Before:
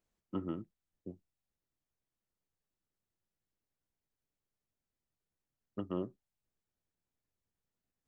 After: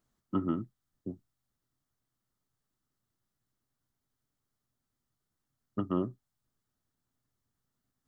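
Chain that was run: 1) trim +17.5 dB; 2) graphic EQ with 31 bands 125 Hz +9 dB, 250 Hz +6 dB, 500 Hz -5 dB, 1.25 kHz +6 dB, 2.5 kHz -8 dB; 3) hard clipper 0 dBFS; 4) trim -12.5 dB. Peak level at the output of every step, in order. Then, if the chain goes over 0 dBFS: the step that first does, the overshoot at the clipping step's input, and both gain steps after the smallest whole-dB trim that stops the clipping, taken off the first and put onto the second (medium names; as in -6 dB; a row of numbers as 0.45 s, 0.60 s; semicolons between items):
-6.5 dBFS, -5.5 dBFS, -5.5 dBFS, -18.0 dBFS; nothing clips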